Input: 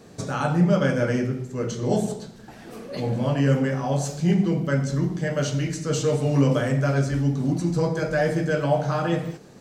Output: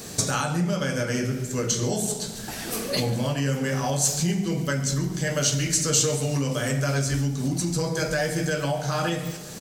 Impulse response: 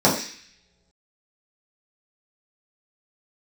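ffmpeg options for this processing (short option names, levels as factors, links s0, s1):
-filter_complex "[0:a]lowshelf=f=92:g=6,asplit=2[s0][s1];[s1]acompressor=threshold=0.0251:ratio=6,volume=0.794[s2];[s0][s2]amix=inputs=2:normalize=0,aecho=1:1:139|278|417|556|695:0.126|0.068|0.0367|0.0198|0.0107,alimiter=limit=0.133:level=0:latency=1:release=475,crystalizer=i=6:c=0"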